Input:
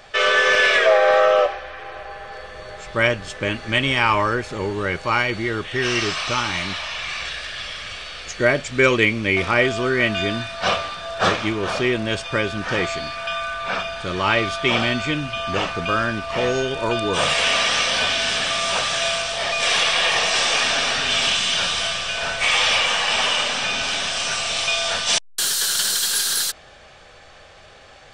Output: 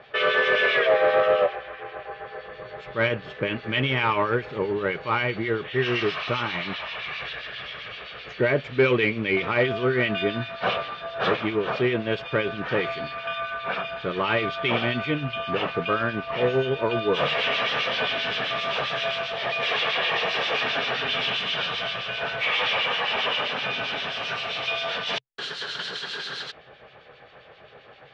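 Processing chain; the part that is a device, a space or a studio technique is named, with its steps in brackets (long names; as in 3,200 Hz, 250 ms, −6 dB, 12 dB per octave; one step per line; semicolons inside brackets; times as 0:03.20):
guitar amplifier with harmonic tremolo (two-band tremolo in antiphase 7.6 Hz, crossover 2,100 Hz; soft clipping −15 dBFS, distortion −16 dB; loudspeaker in its box 85–3,500 Hz, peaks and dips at 89 Hz −10 dB, 130 Hz +7 dB, 440 Hz +7 dB)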